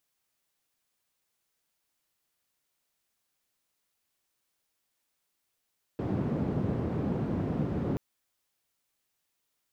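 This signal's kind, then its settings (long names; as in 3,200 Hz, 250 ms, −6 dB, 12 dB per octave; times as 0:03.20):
band-limited noise 100–250 Hz, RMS −30.5 dBFS 1.98 s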